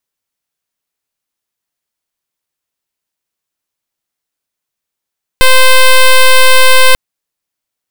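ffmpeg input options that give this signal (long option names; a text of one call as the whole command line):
ffmpeg -f lavfi -i "aevalsrc='0.668*(2*lt(mod(518*t,1),0.08)-1)':duration=1.54:sample_rate=44100" out.wav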